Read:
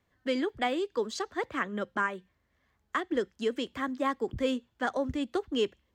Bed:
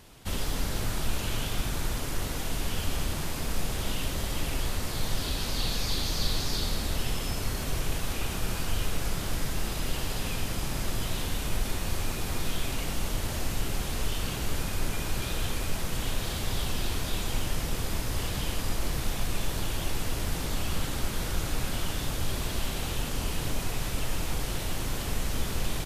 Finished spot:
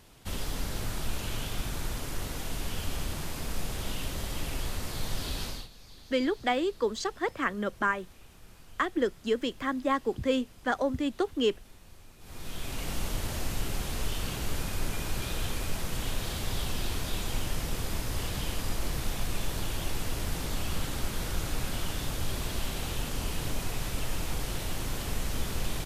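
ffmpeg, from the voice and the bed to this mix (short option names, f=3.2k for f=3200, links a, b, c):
-filter_complex "[0:a]adelay=5850,volume=2dB[a];[1:a]volume=17dB,afade=t=out:st=5.43:d=0.25:silence=0.112202,afade=t=in:st=12.19:d=0.75:silence=0.0944061[b];[a][b]amix=inputs=2:normalize=0"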